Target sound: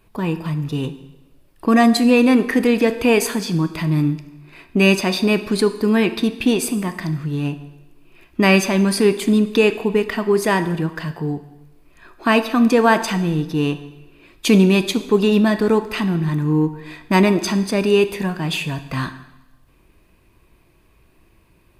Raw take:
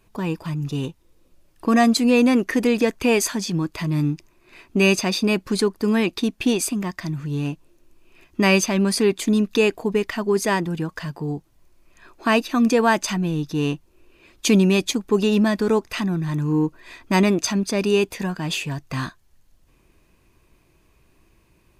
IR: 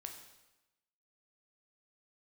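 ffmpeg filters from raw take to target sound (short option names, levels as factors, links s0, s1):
-filter_complex "[0:a]equalizer=f=6400:t=o:w=0.67:g=-7.5,asplit=2[s0][s1];[1:a]atrim=start_sample=2205[s2];[s1][s2]afir=irnorm=-1:irlink=0,volume=1.68[s3];[s0][s3]amix=inputs=2:normalize=0,volume=0.75"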